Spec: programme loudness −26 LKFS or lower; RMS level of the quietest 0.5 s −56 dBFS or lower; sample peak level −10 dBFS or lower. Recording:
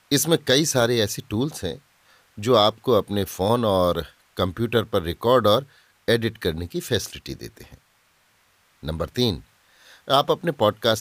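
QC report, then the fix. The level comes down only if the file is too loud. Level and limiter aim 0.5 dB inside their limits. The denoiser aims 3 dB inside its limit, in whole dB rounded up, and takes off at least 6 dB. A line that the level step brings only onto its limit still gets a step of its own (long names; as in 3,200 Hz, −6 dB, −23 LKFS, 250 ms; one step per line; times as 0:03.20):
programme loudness −22.0 LKFS: out of spec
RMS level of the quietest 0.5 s −62 dBFS: in spec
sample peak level −5.0 dBFS: out of spec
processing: level −4.5 dB
brickwall limiter −10.5 dBFS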